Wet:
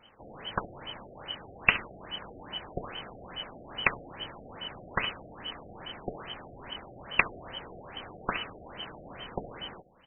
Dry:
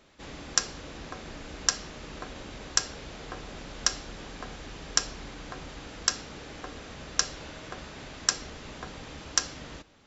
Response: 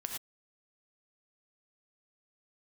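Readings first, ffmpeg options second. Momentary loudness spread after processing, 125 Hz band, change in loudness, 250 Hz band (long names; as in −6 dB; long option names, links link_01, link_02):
15 LU, −1.5 dB, −2.5 dB, −1.5 dB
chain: -filter_complex "[0:a]afftfilt=real='real(if(lt(b,272),68*(eq(floor(b/68),0)*2+eq(floor(b/68),1)*3+eq(floor(b/68),2)*0+eq(floor(b/68),3)*1)+mod(b,68),b),0)':imag='imag(if(lt(b,272),68*(eq(floor(b/68),0)*2+eq(floor(b/68),1)*3+eq(floor(b/68),2)*0+eq(floor(b/68),3)*1)+mod(b,68),b),0)':win_size=2048:overlap=0.75,acontrast=78,asplit=2[link_01][link_02];[link_02]adelay=68,lowpass=frequency=2000:poles=1,volume=-15.5dB,asplit=2[link_03][link_04];[link_04]adelay=68,lowpass=frequency=2000:poles=1,volume=0.23[link_05];[link_03][link_05]amix=inputs=2:normalize=0[link_06];[link_01][link_06]amix=inputs=2:normalize=0,afftfilt=real='re*lt(b*sr/1024,750*pow(3200/750,0.5+0.5*sin(2*PI*2.4*pts/sr)))':imag='im*lt(b*sr/1024,750*pow(3200/750,0.5+0.5*sin(2*PI*2.4*pts/sr)))':win_size=1024:overlap=0.75,volume=1.5dB"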